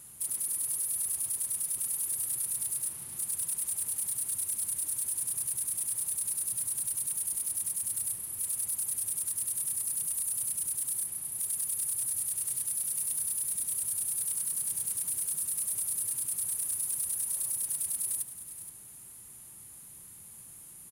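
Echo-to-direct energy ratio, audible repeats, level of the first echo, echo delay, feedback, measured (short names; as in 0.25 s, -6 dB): -12.5 dB, 2, -12.5 dB, 0.472 s, 18%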